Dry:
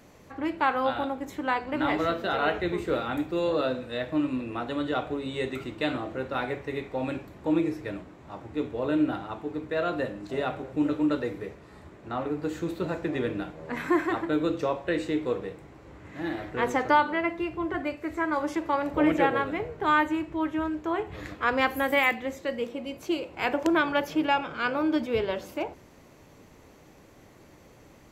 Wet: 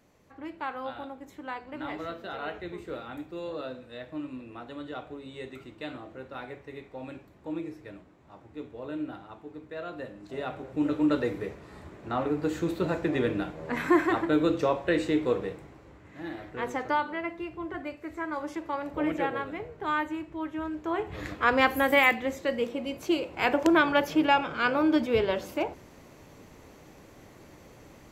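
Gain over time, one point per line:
9.93 s -10 dB
11.21 s +2 dB
15.52 s +2 dB
16.04 s -6 dB
20.51 s -6 dB
21.24 s +2 dB

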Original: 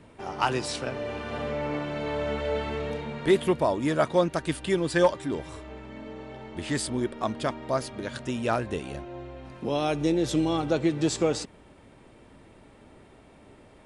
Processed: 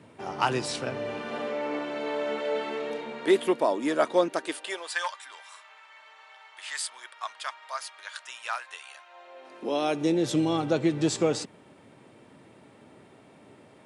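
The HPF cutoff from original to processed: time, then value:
HPF 24 dB/oct
1.04 s 100 Hz
1.51 s 250 Hz
4.33 s 250 Hz
5.03 s 1000 Hz
9.05 s 1000 Hz
9.62 s 270 Hz
10.39 s 110 Hz

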